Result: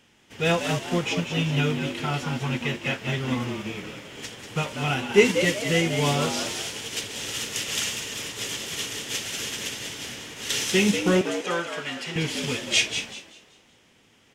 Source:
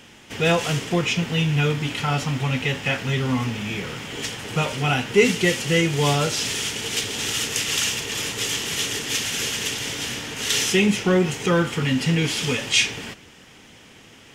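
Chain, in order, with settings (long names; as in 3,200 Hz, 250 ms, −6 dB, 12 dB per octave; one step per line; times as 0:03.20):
0:11.21–0:12.16: meter weighting curve A
echo with shifted repeats 191 ms, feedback 42%, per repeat +100 Hz, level −6 dB
expander for the loud parts 1.5 to 1, over −36 dBFS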